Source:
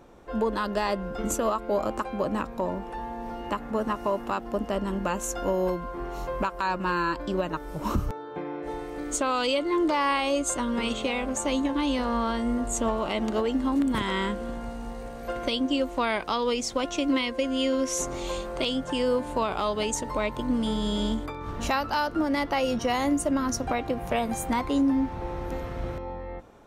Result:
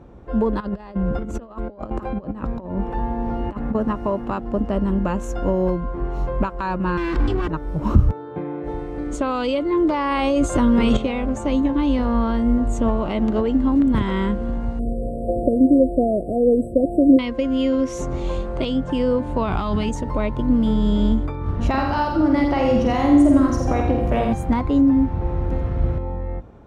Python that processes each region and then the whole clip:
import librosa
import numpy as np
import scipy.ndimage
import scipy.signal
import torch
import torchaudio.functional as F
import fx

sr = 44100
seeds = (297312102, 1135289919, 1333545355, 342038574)

y = fx.chain(x, sr, fx.high_shelf(hz=8000.0, db=-7.0),
    fx.over_compress(threshold_db=-33.0, ratio=-0.5), at=(0.6, 3.75))
y = fx.chain(y, sr, fx.lower_of_two(delay_ms=2.6),
    fx.peak_eq(hz=630.0, db=-8.5, octaves=0.86),
    fx.env_flatten(amount_pct=100), at=(6.97, 7.48))
y = fx.chain(y, sr, fx.high_shelf(hz=9300.0, db=6.0),
    fx.env_flatten(amount_pct=100), at=(10.11, 10.97))
y = fx.chain(y, sr, fx.delta_mod(bps=64000, step_db=-36.5),
    fx.brickwall_bandstop(low_hz=730.0, high_hz=7700.0),
    fx.peak_eq(hz=540.0, db=6.5, octaves=3.0), at=(14.79, 17.19))
y = fx.chain(y, sr, fx.peak_eq(hz=510.0, db=-14.5, octaves=0.57),
    fx.env_flatten(amount_pct=100), at=(19.47, 19.89))
y = fx.chain(y, sr, fx.room_flutter(wall_m=8.3, rt60_s=0.57),
    fx.echo_crushed(ms=83, feedback_pct=35, bits=9, wet_db=-5.5), at=(21.69, 24.33))
y = scipy.signal.sosfilt(scipy.signal.butter(2, 55.0, 'highpass', fs=sr, output='sos'), y)
y = fx.riaa(y, sr, side='playback')
y = F.gain(torch.from_numpy(y), 1.5).numpy()